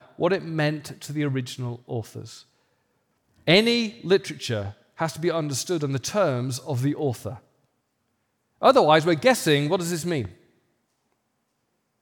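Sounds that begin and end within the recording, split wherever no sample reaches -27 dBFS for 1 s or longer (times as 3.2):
3.48–7.33
8.63–10.25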